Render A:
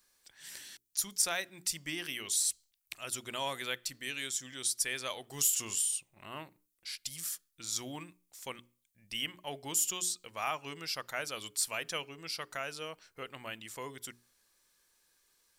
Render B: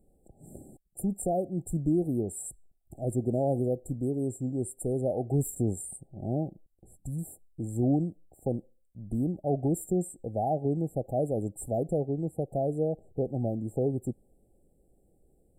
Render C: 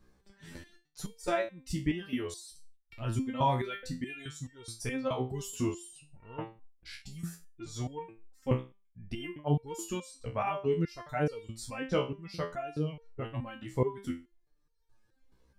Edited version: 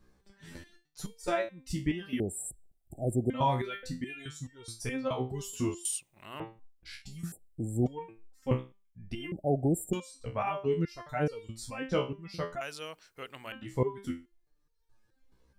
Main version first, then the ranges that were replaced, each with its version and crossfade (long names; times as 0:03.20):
C
0:02.20–0:03.30: punch in from B
0:05.85–0:06.40: punch in from A
0:07.32–0:07.86: punch in from B
0:09.32–0:09.93: punch in from B
0:12.61–0:13.52: punch in from A